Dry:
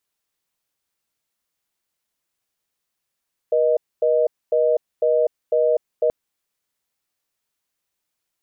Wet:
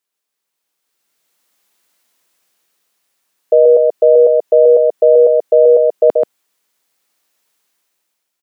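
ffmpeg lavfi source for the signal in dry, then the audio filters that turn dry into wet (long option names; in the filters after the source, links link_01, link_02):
-f lavfi -i "aevalsrc='0.133*(sin(2*PI*480*t)+sin(2*PI*620*t))*clip(min(mod(t,0.5),0.25-mod(t,0.5))/0.005,0,1)':duration=2.58:sample_rate=44100"
-filter_complex "[0:a]highpass=210,asplit=2[link_01][link_02];[link_02]aecho=0:1:133:0.668[link_03];[link_01][link_03]amix=inputs=2:normalize=0,dynaudnorm=framelen=250:gausssize=9:maxgain=15dB"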